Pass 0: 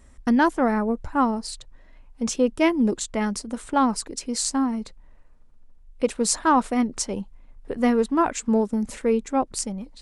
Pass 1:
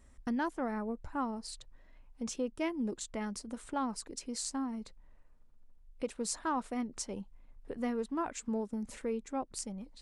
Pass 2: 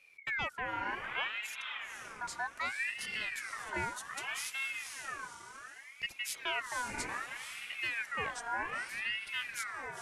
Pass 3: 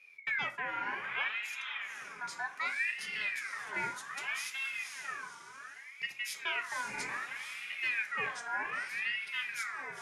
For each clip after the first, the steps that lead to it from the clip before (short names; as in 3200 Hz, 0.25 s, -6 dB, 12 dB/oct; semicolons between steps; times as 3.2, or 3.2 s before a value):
compressor 1.5:1, threshold -33 dBFS, peak gain reduction 7 dB; gain -8.5 dB
diffused feedback echo 0.492 s, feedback 41%, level -4 dB; ring modulator with a swept carrier 1800 Hz, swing 35%, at 0.65 Hz
reverb RT60 0.35 s, pre-delay 3 ms, DRR 6 dB; gain -3.5 dB